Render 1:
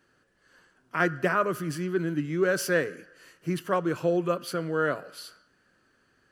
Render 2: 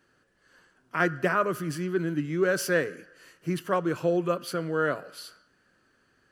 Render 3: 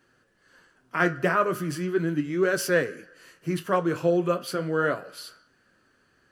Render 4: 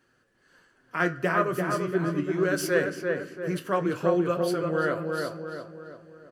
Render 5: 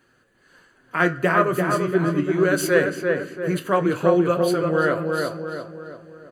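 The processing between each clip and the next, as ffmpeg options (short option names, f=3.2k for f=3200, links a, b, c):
-af anull
-af "flanger=delay=7.7:depth=10:regen=-58:speed=0.37:shape=sinusoidal,volume=6dB"
-filter_complex "[0:a]asplit=2[a][b];[b]adelay=341,lowpass=f=1.9k:p=1,volume=-3dB,asplit=2[c][d];[d]adelay=341,lowpass=f=1.9k:p=1,volume=0.5,asplit=2[e][f];[f]adelay=341,lowpass=f=1.9k:p=1,volume=0.5,asplit=2[g][h];[h]adelay=341,lowpass=f=1.9k:p=1,volume=0.5,asplit=2[i][j];[j]adelay=341,lowpass=f=1.9k:p=1,volume=0.5,asplit=2[k][l];[l]adelay=341,lowpass=f=1.9k:p=1,volume=0.5,asplit=2[m][n];[n]adelay=341,lowpass=f=1.9k:p=1,volume=0.5[o];[a][c][e][g][i][k][m][o]amix=inputs=8:normalize=0,volume=-2.5dB"
-af "asuperstop=centerf=5400:order=8:qfactor=6,volume=6dB"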